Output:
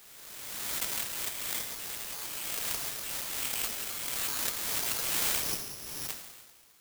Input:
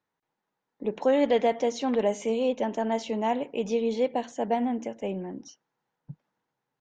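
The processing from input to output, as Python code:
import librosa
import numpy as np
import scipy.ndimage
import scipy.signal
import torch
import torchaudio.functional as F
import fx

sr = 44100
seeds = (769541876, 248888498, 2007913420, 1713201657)

y = fx.block_float(x, sr, bits=5)
y = scipy.signal.sosfilt(scipy.signal.butter(4, 1400.0, 'highpass', fs=sr, output='sos'), y)
y = fx.tilt_eq(y, sr, slope=4.5)
y = fx.over_compress(y, sr, threshold_db=-44.0, ratio=-1.0)
y = fx.rev_plate(y, sr, seeds[0], rt60_s=1.5, hf_ratio=0.95, predelay_ms=0, drr_db=0.5)
y = (np.kron(y[::8], np.eye(8)[0]) * 8)[:len(y)]
y = fx.pre_swell(y, sr, db_per_s=29.0)
y = y * librosa.db_to_amplitude(-4.5)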